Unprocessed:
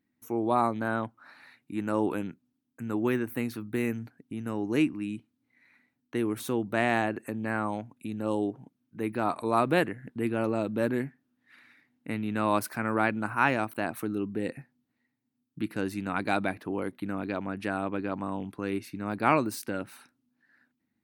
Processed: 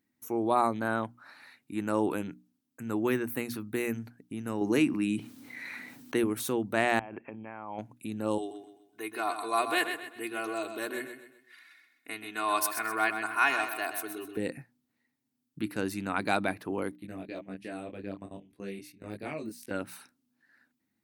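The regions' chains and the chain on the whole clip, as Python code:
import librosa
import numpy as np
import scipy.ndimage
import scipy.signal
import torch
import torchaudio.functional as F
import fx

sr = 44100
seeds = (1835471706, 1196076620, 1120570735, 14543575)

y = fx.chain(x, sr, fx.highpass(hz=120.0, slope=12),
    fx.env_flatten(amount_pct=50), at=(4.61, 6.24))
y = fx.chain(y, sr, fx.over_compress(threshold_db=-36.0, ratio=-1.0),
    fx.cheby_ripple(hz=3300.0, ripple_db=9), at=(6.99, 7.79))
y = fx.chain(y, sr, fx.highpass(hz=1300.0, slope=6),
    fx.comb(ms=2.8, depth=0.92),
    fx.echo_feedback(ms=128, feedback_pct=38, wet_db=-8.5), at=(8.38, 14.37))
y = fx.chain(y, sr, fx.band_shelf(hz=1100.0, db=-10.5, octaves=1.1),
    fx.level_steps(step_db=17),
    fx.detune_double(cents=15), at=(16.96, 19.71))
y = fx.bass_treble(y, sr, bass_db=-2, treble_db=5)
y = fx.hum_notches(y, sr, base_hz=60, count=5)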